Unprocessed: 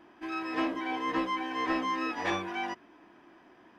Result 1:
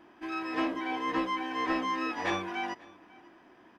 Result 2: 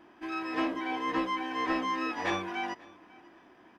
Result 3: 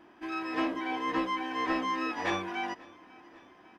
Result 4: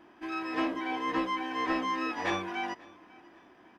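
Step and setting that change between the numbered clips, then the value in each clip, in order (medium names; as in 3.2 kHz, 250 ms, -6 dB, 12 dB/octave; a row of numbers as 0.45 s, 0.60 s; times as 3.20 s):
feedback delay, feedback: 15%, 23%, 62%, 35%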